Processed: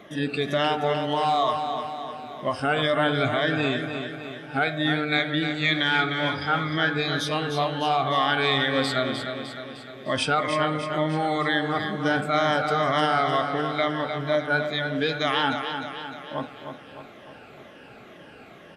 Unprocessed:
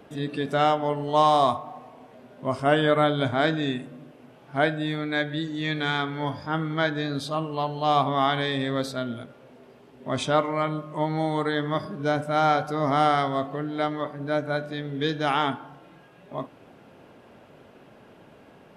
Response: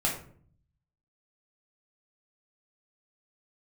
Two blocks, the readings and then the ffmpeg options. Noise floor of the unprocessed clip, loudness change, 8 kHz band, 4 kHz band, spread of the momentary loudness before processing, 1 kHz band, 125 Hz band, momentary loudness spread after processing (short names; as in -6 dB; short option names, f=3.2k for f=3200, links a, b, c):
-52 dBFS, +1.0 dB, +3.0 dB, +5.5 dB, 12 LU, 0.0 dB, -0.5 dB, 12 LU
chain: -af "afftfilt=real='re*pow(10,12/40*sin(2*PI*(1.2*log(max(b,1)*sr/1024/100)/log(2)-(-2.1)*(pts-256)/sr)))':imag='im*pow(10,12/40*sin(2*PI*(1.2*log(max(b,1)*sr/1024/100)/log(2)-(-2.1)*(pts-256)/sr)))':win_size=1024:overlap=0.75,alimiter=limit=-17dB:level=0:latency=1:release=154,asuperstop=centerf=970:order=4:qfactor=7.5,equalizer=f=2.3k:t=o:w=2.4:g=7.5,aecho=1:1:304|608|912|1216|1520|1824|2128:0.422|0.228|0.123|0.0664|0.0359|0.0194|0.0105"